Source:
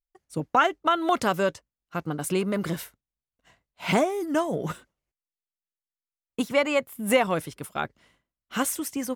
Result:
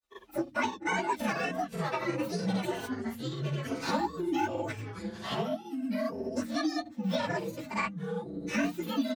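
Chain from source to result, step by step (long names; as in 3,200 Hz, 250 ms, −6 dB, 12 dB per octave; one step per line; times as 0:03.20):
partials spread apart or drawn together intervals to 129%
high-pass filter 86 Hz
high-shelf EQ 5,900 Hz −5 dB
mains-hum notches 60/120/180/240/300 Hz
comb filter 3.4 ms, depth 97%
in parallel at +2 dB: downward compressor, threshold −28 dBFS, peak gain reduction 13.5 dB
on the sum: chorus effect 1.7 Hz, delay 16 ms, depth 7.5 ms
granular cloud, spray 37 ms, pitch spread up and down by 0 semitones
tape wow and flutter 22 cents
flanger 0.22 Hz, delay 2.5 ms, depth 3.8 ms, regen −58%
delay with pitch and tempo change per echo 131 ms, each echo −5 semitones, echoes 2, each echo −6 dB
multiband upward and downward compressor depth 70%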